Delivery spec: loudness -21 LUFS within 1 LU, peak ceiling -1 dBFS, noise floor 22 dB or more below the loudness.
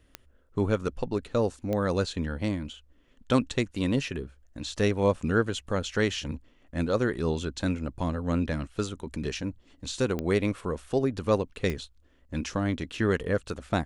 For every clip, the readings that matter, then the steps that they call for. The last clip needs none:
clicks found 4; loudness -29.5 LUFS; peak level -8.5 dBFS; loudness target -21.0 LUFS
-> de-click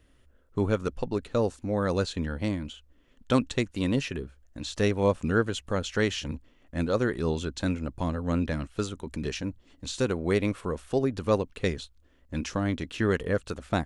clicks found 0; loudness -29.5 LUFS; peak level -8.5 dBFS; loudness target -21.0 LUFS
-> trim +8.5 dB; peak limiter -1 dBFS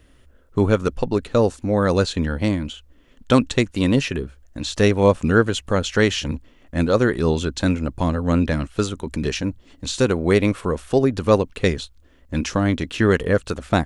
loudness -21.0 LUFS; peak level -1.0 dBFS; noise floor -53 dBFS

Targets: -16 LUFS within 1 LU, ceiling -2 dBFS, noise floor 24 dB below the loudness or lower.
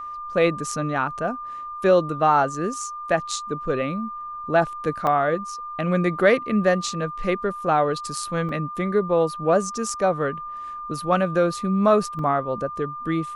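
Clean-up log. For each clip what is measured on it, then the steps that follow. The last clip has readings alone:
dropouts 3; longest dropout 3.0 ms; steady tone 1.2 kHz; tone level -31 dBFS; loudness -23.0 LUFS; peak level -4.5 dBFS; loudness target -16.0 LUFS
-> interpolate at 5.07/8.49/12.19 s, 3 ms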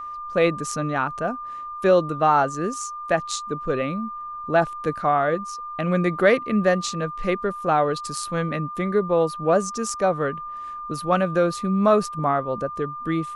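dropouts 0; steady tone 1.2 kHz; tone level -31 dBFS
-> band-stop 1.2 kHz, Q 30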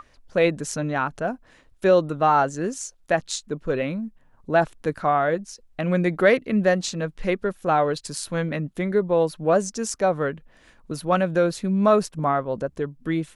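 steady tone not found; loudness -23.5 LUFS; peak level -4.5 dBFS; loudness target -16.0 LUFS
-> trim +7.5 dB; peak limiter -2 dBFS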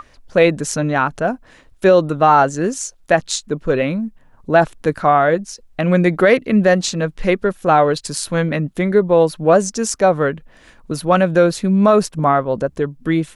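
loudness -16.5 LUFS; peak level -2.0 dBFS; noise floor -49 dBFS

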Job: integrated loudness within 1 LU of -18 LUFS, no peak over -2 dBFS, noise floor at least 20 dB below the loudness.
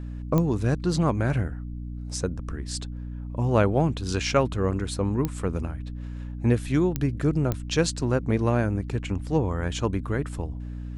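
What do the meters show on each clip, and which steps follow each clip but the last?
clicks found 4; hum 60 Hz; highest harmonic 300 Hz; hum level -32 dBFS; loudness -26.0 LUFS; peak level -7.5 dBFS; loudness target -18.0 LUFS
-> de-click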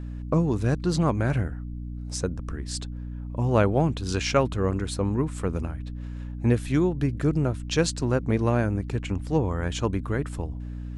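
clicks found 0; hum 60 Hz; highest harmonic 300 Hz; hum level -32 dBFS
-> de-hum 60 Hz, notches 5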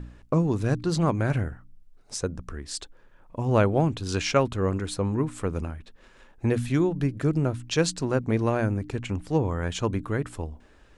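hum not found; loudness -26.5 LUFS; peak level -7.5 dBFS; loudness target -18.0 LUFS
-> trim +8.5 dB; peak limiter -2 dBFS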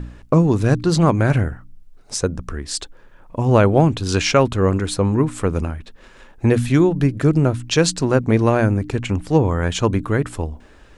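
loudness -18.5 LUFS; peak level -2.0 dBFS; noise floor -47 dBFS

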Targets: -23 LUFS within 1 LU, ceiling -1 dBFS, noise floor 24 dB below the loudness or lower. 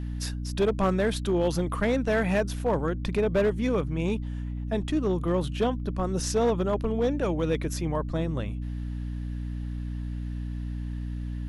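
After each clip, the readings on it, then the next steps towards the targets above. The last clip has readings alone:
clipped samples 1.1%; clipping level -18.0 dBFS; hum 60 Hz; highest harmonic 300 Hz; hum level -30 dBFS; loudness -28.5 LUFS; peak level -18.0 dBFS; loudness target -23.0 LUFS
-> clip repair -18 dBFS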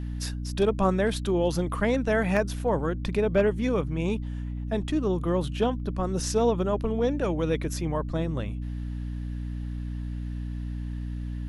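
clipped samples 0.0%; hum 60 Hz; highest harmonic 300 Hz; hum level -30 dBFS
-> de-hum 60 Hz, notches 5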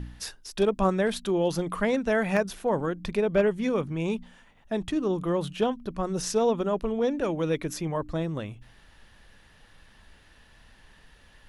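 hum not found; loudness -27.5 LUFS; peak level -9.0 dBFS; loudness target -23.0 LUFS
-> trim +4.5 dB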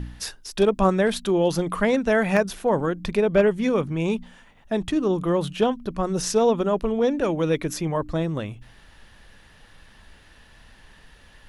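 loudness -23.0 LUFS; peak level -4.5 dBFS; noise floor -52 dBFS

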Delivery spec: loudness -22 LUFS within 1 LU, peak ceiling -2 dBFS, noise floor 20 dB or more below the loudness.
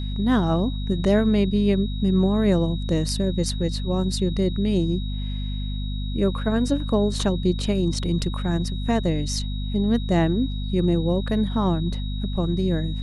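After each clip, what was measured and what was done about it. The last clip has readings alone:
hum 50 Hz; highest harmonic 250 Hz; hum level -25 dBFS; steady tone 3.8 kHz; tone level -39 dBFS; loudness -23.5 LUFS; peak level -8.0 dBFS; loudness target -22.0 LUFS
-> de-hum 50 Hz, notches 5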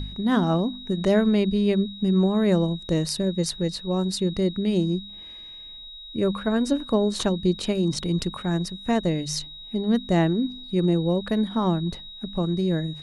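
hum not found; steady tone 3.8 kHz; tone level -39 dBFS
-> band-stop 3.8 kHz, Q 30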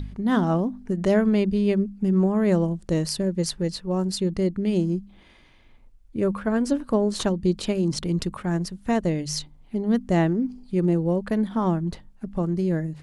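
steady tone not found; loudness -24.5 LUFS; peak level -10.0 dBFS; loudness target -22.0 LUFS
-> trim +2.5 dB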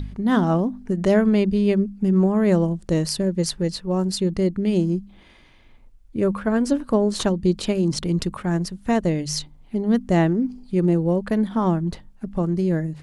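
loudness -22.0 LUFS; peak level -7.5 dBFS; noise floor -50 dBFS

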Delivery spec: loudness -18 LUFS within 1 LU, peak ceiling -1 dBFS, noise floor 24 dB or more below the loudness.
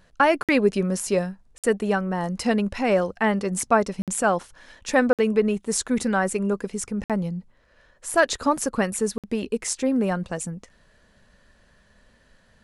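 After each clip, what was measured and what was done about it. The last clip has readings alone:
dropouts 6; longest dropout 57 ms; loudness -24.0 LUFS; peak level -5.5 dBFS; loudness target -18.0 LUFS
-> interpolate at 0.43/1.58/4.02/5.13/7.04/9.18 s, 57 ms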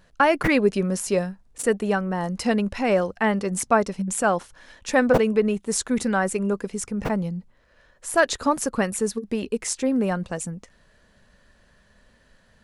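dropouts 0; loudness -23.5 LUFS; peak level -5.5 dBFS; loudness target -18.0 LUFS
-> trim +5.5 dB; peak limiter -1 dBFS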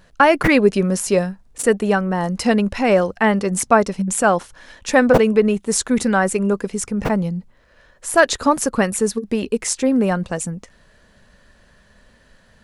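loudness -18.0 LUFS; peak level -1.0 dBFS; noise floor -54 dBFS

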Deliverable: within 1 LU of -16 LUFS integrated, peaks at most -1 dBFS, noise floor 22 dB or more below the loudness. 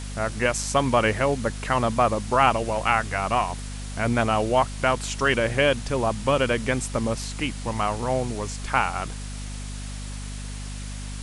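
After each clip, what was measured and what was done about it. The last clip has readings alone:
hum 50 Hz; highest harmonic 250 Hz; hum level -31 dBFS; noise floor -34 dBFS; noise floor target -46 dBFS; loudness -24.0 LUFS; peak level -4.0 dBFS; loudness target -16.0 LUFS
-> de-hum 50 Hz, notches 5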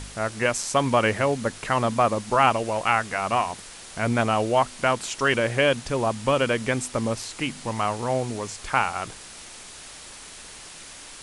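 hum not found; noise floor -43 dBFS; noise floor target -46 dBFS
-> noise reduction 6 dB, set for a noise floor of -43 dBFS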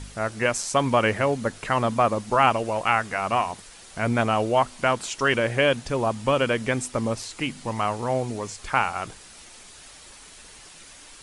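noise floor -47 dBFS; loudness -24.0 LUFS; peak level -4.0 dBFS; loudness target -16.0 LUFS
-> trim +8 dB; peak limiter -1 dBFS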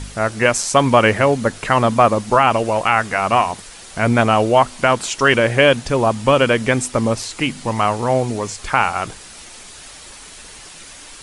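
loudness -16.5 LUFS; peak level -1.0 dBFS; noise floor -39 dBFS

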